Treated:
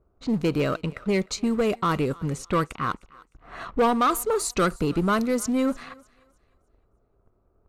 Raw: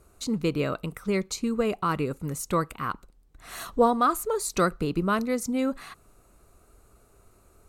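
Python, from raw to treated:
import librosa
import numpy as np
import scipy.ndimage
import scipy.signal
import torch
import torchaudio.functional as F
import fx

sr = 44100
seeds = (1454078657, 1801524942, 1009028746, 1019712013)

p1 = fx.leveller(x, sr, passes=2)
p2 = fx.env_lowpass(p1, sr, base_hz=910.0, full_db=-17.0)
p3 = np.clip(p2, -10.0 ** (-20.0 / 20.0), 10.0 ** (-20.0 / 20.0))
p4 = p2 + F.gain(torch.from_numpy(p3), -12.0).numpy()
p5 = fx.echo_thinned(p4, sr, ms=306, feedback_pct=33, hz=470.0, wet_db=-22.0)
y = F.gain(torch.from_numpy(p5), -5.0).numpy()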